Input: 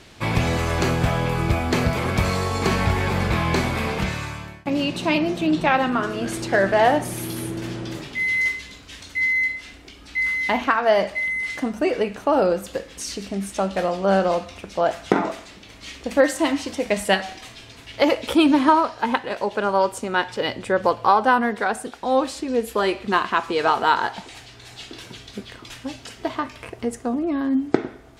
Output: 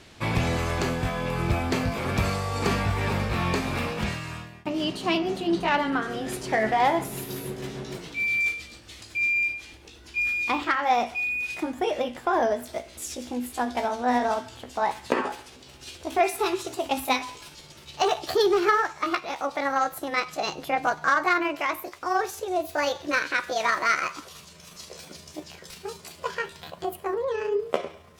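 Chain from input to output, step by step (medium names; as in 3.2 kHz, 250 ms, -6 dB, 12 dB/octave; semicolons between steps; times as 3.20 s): pitch bend over the whole clip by +8 st starting unshifted; Chebyshev shaper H 5 -22 dB, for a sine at -2 dBFS; trim -6 dB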